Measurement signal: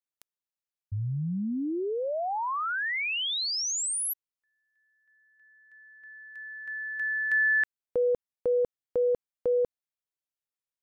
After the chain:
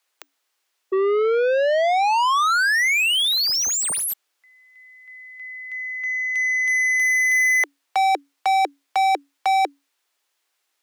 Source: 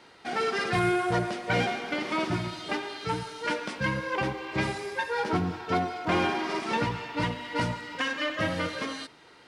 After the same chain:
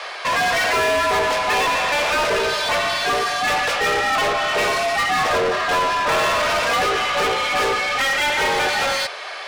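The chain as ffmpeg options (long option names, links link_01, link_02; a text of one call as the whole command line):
ffmpeg -i in.wav -filter_complex "[0:a]afreqshift=280,asplit=2[link_01][link_02];[link_02]highpass=frequency=720:poles=1,volume=31dB,asoftclip=type=tanh:threshold=-12.5dB[link_03];[link_01][link_03]amix=inputs=2:normalize=0,lowpass=frequency=5000:poles=1,volume=-6dB" out.wav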